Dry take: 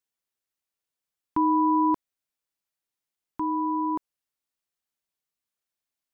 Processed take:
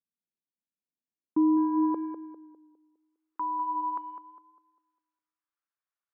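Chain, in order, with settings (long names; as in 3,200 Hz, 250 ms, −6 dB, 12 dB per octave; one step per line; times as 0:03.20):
band-pass filter sweep 210 Hz → 1,300 Hz, 0:00.80–0:03.49
tape delay 202 ms, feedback 44%, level −7 dB, low-pass 1,100 Hz
level +3 dB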